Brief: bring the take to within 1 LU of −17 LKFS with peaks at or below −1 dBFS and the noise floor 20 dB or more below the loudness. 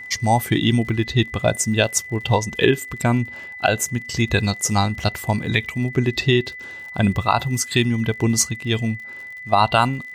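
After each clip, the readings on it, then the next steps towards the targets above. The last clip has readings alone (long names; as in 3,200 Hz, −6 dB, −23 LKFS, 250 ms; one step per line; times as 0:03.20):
crackle rate 54 per second; interfering tone 2,000 Hz; level of the tone −33 dBFS; integrated loudness −20.5 LKFS; sample peak −2.5 dBFS; target loudness −17.0 LKFS
→ click removal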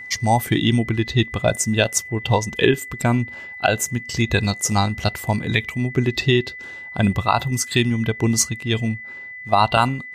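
crackle rate 0 per second; interfering tone 2,000 Hz; level of the tone −33 dBFS
→ notch filter 2,000 Hz, Q 30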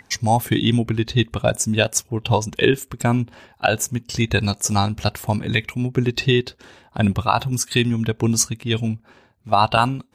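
interfering tone none found; integrated loudness −20.5 LKFS; sample peak −2.5 dBFS; target loudness −17.0 LKFS
→ level +3.5 dB
brickwall limiter −1 dBFS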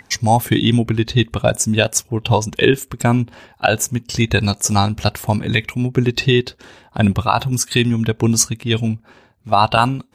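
integrated loudness −17.5 LKFS; sample peak −1.0 dBFS; background noise floor −53 dBFS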